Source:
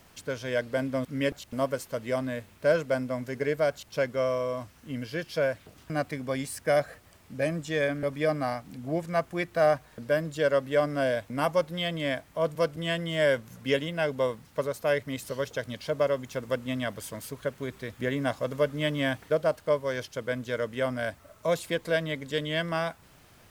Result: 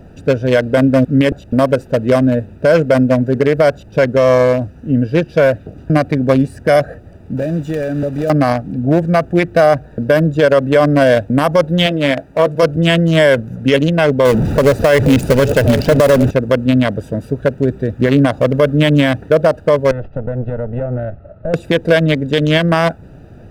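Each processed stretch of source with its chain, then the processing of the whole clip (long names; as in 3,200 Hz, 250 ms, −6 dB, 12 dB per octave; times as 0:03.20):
0:07.37–0:08.30: one scale factor per block 3 bits + tilt shelving filter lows −3 dB, about 1,400 Hz + downward compressor 2.5 to 1, threshold −35 dBFS
0:11.86–0:12.63: low-shelf EQ 160 Hz −10.5 dB + double-tracking delay 15 ms −9.5 dB
0:14.25–0:16.31: converter with a step at zero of −29 dBFS + single-tap delay 809 ms −11.5 dB
0:19.91–0:21.54: lower of the sound and its delayed copy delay 1.5 ms + downward compressor 3 to 1, threshold −35 dBFS + high-frequency loss of the air 430 metres
whole clip: adaptive Wiener filter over 41 samples; boost into a limiter +23 dB; level −1 dB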